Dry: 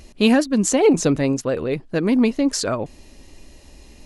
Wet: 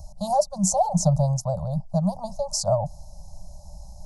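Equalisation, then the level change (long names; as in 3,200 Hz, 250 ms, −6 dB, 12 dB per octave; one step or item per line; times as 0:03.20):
Chebyshev band-stop filter 190–580 Hz, order 5
Chebyshev band-stop filter 840–5,300 Hz, order 3
high-shelf EQ 3,100 Hz −8 dB
+6.0 dB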